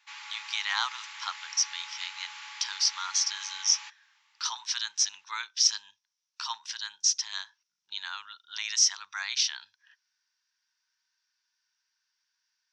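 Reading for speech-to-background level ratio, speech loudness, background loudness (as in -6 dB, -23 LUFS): 13.5 dB, -28.5 LUFS, -42.0 LUFS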